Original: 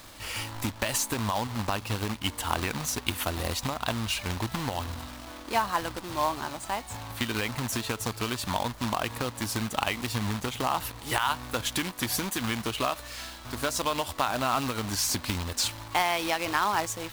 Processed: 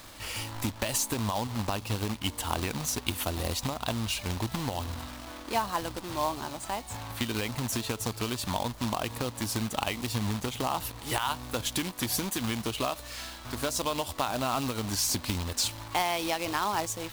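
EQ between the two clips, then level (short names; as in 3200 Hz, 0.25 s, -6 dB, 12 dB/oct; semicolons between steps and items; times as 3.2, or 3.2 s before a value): dynamic EQ 1600 Hz, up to -6 dB, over -41 dBFS, Q 0.93; 0.0 dB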